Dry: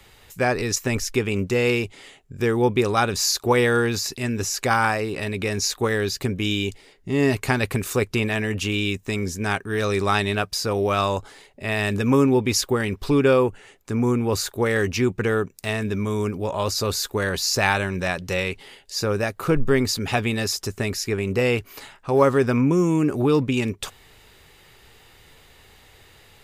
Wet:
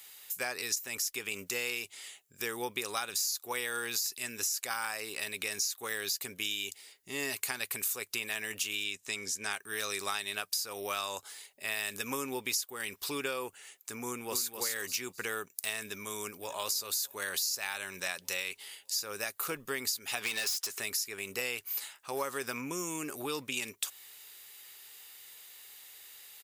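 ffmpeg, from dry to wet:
ffmpeg -i in.wav -filter_complex "[0:a]asettb=1/sr,asplit=3[link_01][link_02][link_03];[link_01]atrim=end=8.844[link_04];[link_02]atrim=start=8.84:end=9.53,asetpts=PTS-STARTPTS,afade=type=in:duration=0.004:curve=qsin,afade=type=out:start_time=0.686:duration=0.004:curve=qsin,lowpass=8300[link_05];[link_03]atrim=start=9.526[link_06];[link_04][link_05]acrossfade=duration=0.004:curve1=hsin:curve2=qsin[link_07];[link_07][link_06]acrossfade=duration=0.004:curve1=qsin:curve2=hsin,asplit=2[link_08][link_09];[link_09]afade=type=in:start_time=14.05:duration=0.01,afade=type=out:start_time=14.55:duration=0.01,aecho=0:1:260|520|780:0.668344|0.133669|0.0267338[link_10];[link_08][link_10]amix=inputs=2:normalize=0,asplit=2[link_11][link_12];[link_12]afade=type=in:start_time=15.82:duration=0.01,afade=type=out:start_time=16.6:duration=0.01,aecho=0:1:600|1200|1800|2400:0.158489|0.0713202|0.0320941|0.0144423[link_13];[link_11][link_13]amix=inputs=2:normalize=0,asplit=3[link_14][link_15][link_16];[link_14]afade=type=out:start_time=20.2:duration=0.02[link_17];[link_15]asplit=2[link_18][link_19];[link_19]highpass=frequency=720:poles=1,volume=21dB,asoftclip=type=tanh:threshold=-12dB[link_20];[link_18][link_20]amix=inputs=2:normalize=0,lowpass=frequency=3300:poles=1,volume=-6dB,afade=type=in:start_time=20.2:duration=0.02,afade=type=out:start_time=20.79:duration=0.02[link_21];[link_16]afade=type=in:start_time=20.79:duration=0.02[link_22];[link_17][link_21][link_22]amix=inputs=3:normalize=0,highpass=frequency=1300:poles=1,aemphasis=mode=production:type=75fm,acompressor=threshold=-24dB:ratio=10,volume=-6dB" out.wav

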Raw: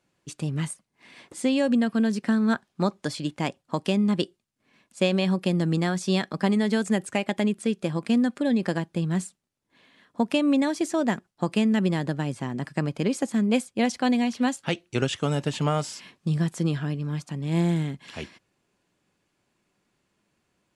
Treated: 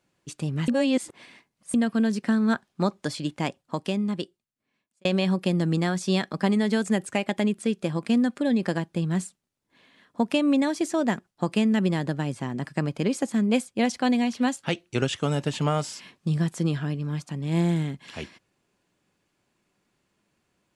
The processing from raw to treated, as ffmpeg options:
ffmpeg -i in.wav -filter_complex "[0:a]asplit=4[link_01][link_02][link_03][link_04];[link_01]atrim=end=0.682[link_05];[link_02]atrim=start=0.678:end=1.742,asetpts=PTS-STARTPTS,areverse[link_06];[link_03]atrim=start=1.738:end=5.05,asetpts=PTS-STARTPTS,afade=type=out:start_time=1.672:duration=1.64[link_07];[link_04]atrim=start=5.05,asetpts=PTS-STARTPTS,afade=type=in:duration=0.004:curve=hsin[link_08];[link_05][link_06]acrossfade=duration=0.004:curve1=hsin:curve2=hsin[link_09];[link_07][link_08]concat=n=2:v=0:a=1[link_10];[link_09][link_10]acrossfade=duration=0.004:curve1=hsin:curve2=hsin" out.wav

